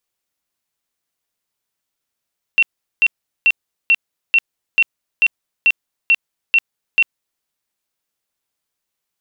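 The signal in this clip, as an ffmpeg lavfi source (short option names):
-f lavfi -i "aevalsrc='0.376*sin(2*PI*2720*mod(t,0.44))*lt(mod(t,0.44),125/2720)':d=4.84:s=44100"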